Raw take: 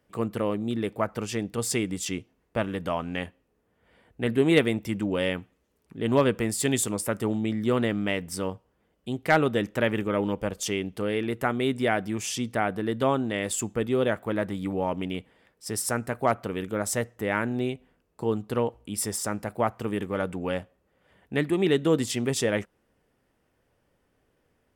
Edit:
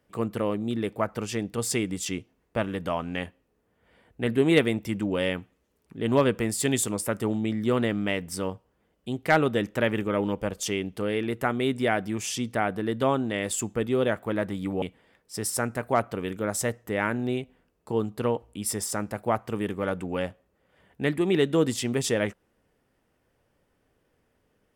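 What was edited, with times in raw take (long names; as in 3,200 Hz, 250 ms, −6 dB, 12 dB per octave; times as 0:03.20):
0:14.82–0:15.14: remove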